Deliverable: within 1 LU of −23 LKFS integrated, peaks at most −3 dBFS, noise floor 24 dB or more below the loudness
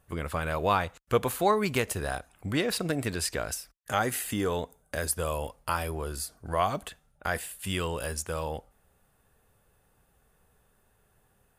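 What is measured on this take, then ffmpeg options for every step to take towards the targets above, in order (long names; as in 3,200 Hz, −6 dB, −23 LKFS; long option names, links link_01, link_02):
integrated loudness −30.5 LKFS; sample peak −11.0 dBFS; target loudness −23.0 LKFS
→ -af "volume=7.5dB"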